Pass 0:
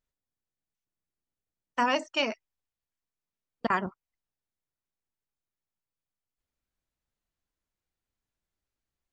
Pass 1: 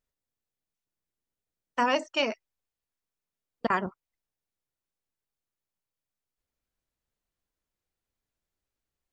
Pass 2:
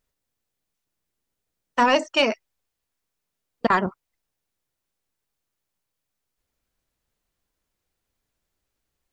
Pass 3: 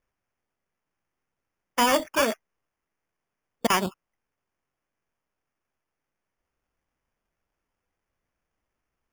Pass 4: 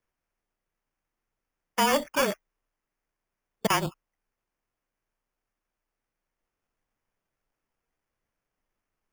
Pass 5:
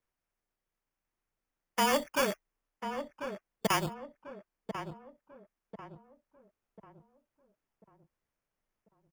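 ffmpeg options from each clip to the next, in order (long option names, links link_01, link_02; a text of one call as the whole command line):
ffmpeg -i in.wav -af "equalizer=frequency=480:width_type=o:width=0.77:gain=3" out.wav
ffmpeg -i in.wav -af "asoftclip=type=tanh:threshold=-15dB,volume=8dB" out.wav
ffmpeg -i in.wav -af "acrusher=samples=11:mix=1:aa=0.000001,volume=-3dB" out.wav
ffmpeg -i in.wav -af "afreqshift=-29,volume=-2dB" out.wav
ffmpeg -i in.wav -filter_complex "[0:a]asplit=2[link_01][link_02];[link_02]adelay=1043,lowpass=frequency=1400:poles=1,volume=-8dB,asplit=2[link_03][link_04];[link_04]adelay=1043,lowpass=frequency=1400:poles=1,volume=0.43,asplit=2[link_05][link_06];[link_06]adelay=1043,lowpass=frequency=1400:poles=1,volume=0.43,asplit=2[link_07][link_08];[link_08]adelay=1043,lowpass=frequency=1400:poles=1,volume=0.43,asplit=2[link_09][link_10];[link_10]adelay=1043,lowpass=frequency=1400:poles=1,volume=0.43[link_11];[link_01][link_03][link_05][link_07][link_09][link_11]amix=inputs=6:normalize=0,volume=-4dB" out.wav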